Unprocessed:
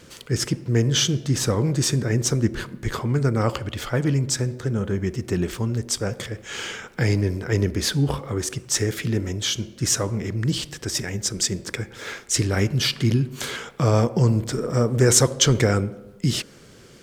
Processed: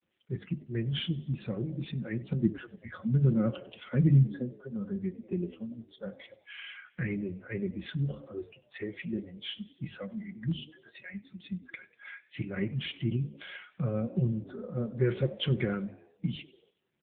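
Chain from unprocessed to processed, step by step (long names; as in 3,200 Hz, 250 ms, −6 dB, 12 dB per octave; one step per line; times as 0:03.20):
noise gate with hold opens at −40 dBFS
noise reduction from a noise print of the clip's start 23 dB
0:02.30–0:04.55: parametric band 180 Hz +5 dB → +13.5 dB 2.4 octaves
mains-hum notches 50/100/150 Hz
comb filter 5.5 ms, depth 61%
flanger 0.14 Hz, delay 1 ms, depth 4.5 ms, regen −79%
phaser with its sweep stopped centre 2,200 Hz, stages 4
echo with shifted repeats 95 ms, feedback 52%, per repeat +73 Hz, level −21 dB
level −4.5 dB
AMR narrowband 7.95 kbit/s 8,000 Hz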